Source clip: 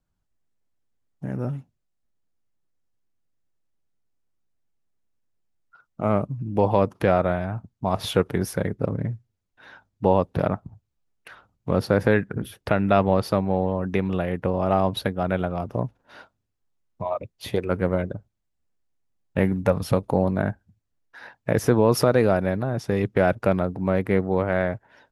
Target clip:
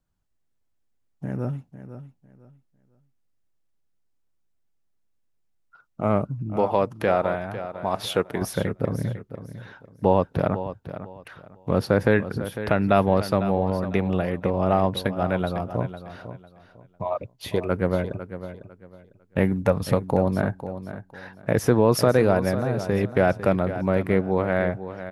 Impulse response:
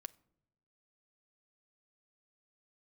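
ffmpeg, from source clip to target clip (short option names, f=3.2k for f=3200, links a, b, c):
-filter_complex "[0:a]asettb=1/sr,asplit=3[a][b][c];[a]atrim=end=6.564[d];[b]atrim=start=6.56:end=8.42,asetpts=PTS-STARTPTS,afade=t=in:d=0.004:c=qsin,afade=t=out:st=1.856:d=0.004:c=qsin,lowshelf=f=200:g=-11[e];[c]atrim=start=8.416[f];[d][e]acrossfade=d=0.004:c1=hsin:c2=qsin[g];[g][f]acrossfade=d=0.004:c1=qsin:c2=hsin,aecho=1:1:501|1002|1503:0.251|0.0628|0.0157"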